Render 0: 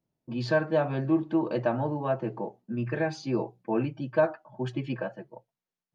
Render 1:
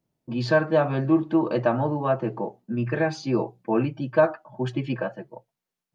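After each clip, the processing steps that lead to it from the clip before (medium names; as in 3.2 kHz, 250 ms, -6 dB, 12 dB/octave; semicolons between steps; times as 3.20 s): dynamic bell 1.2 kHz, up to +5 dB, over -51 dBFS, Q 6.3; trim +4.5 dB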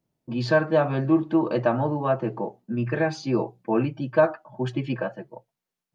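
no audible change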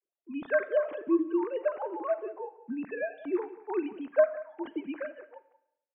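formants replaced by sine waves; delay 182 ms -16.5 dB; on a send at -16 dB: reverberation RT60 0.85 s, pre-delay 35 ms; on the sum: trim -7 dB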